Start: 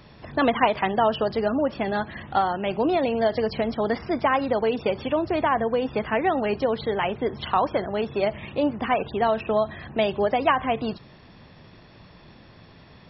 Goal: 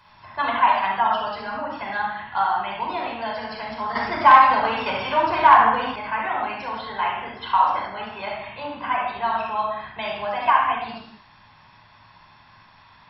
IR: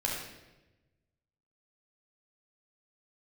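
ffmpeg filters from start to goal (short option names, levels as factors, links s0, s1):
-filter_complex "[1:a]atrim=start_sample=2205,afade=t=out:st=0.33:d=0.01,atrim=end_sample=14994[s0];[0:a][s0]afir=irnorm=-1:irlink=0,asettb=1/sr,asplit=3[s1][s2][s3];[s1]atrim=end=3.954[s4];[s2]atrim=start=3.95:end=5.96,asetpts=PTS-STARTPTS,afade=t=in:d=0.004:c=qsin,afade=t=out:st=2.006:d=0.004:c=qsin,aeval=exprs='0.841*sin(PI/2*1.58*val(0)/0.841)':c=same[s5];[s3]atrim=start=5.956[s6];[s4][s5]acrossfade=d=0.004:c1=hsin:c2=qsin[s7];[s7][s6]acrossfade=d=0.004:c1=qsin:c2=hsin,lowshelf=f=680:t=q:w=3:g=-10.5,volume=0.531"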